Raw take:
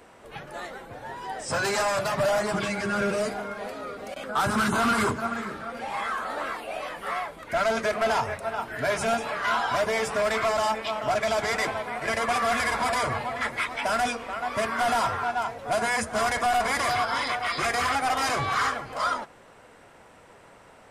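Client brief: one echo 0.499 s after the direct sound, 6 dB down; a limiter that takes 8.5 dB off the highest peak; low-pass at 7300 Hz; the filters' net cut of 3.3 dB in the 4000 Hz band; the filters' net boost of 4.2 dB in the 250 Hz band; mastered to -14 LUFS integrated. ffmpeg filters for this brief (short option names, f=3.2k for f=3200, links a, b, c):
-af "lowpass=7.3k,equalizer=f=250:t=o:g=5,equalizer=f=4k:t=o:g=-4,alimiter=limit=-22.5dB:level=0:latency=1,aecho=1:1:499:0.501,volume=15.5dB"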